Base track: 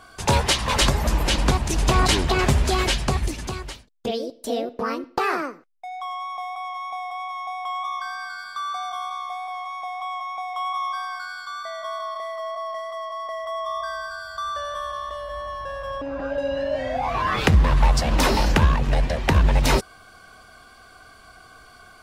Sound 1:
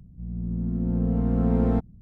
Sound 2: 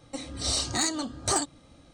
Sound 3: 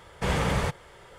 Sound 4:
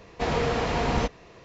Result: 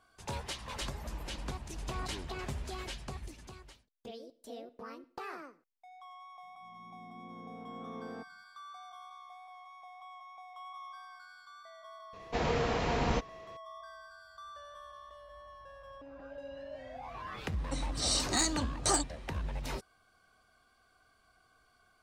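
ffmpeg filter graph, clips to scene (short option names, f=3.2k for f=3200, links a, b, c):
-filter_complex "[0:a]volume=-20dB[a];[1:a]highpass=340[b];[2:a]highpass=110[c];[b]atrim=end=2.01,asetpts=PTS-STARTPTS,volume=-15.5dB,afade=t=in:d=0.004:c=hsin,afade=t=out:st=2.006:d=0.004:c=hsin,adelay=6430[d];[4:a]atrim=end=1.44,asetpts=PTS-STARTPTS,volume=-5.5dB,afade=t=in:d=0.004:c=hsin,afade=t=out:st=1.436:d=0.004:c=hsin,adelay=12130[e];[c]atrim=end=1.93,asetpts=PTS-STARTPTS,volume=-3dB,afade=t=in:d=0.004:c=hsin,afade=t=out:st=1.926:d=0.004:c=hsin,adelay=17580[f];[a][d][e][f]amix=inputs=4:normalize=0"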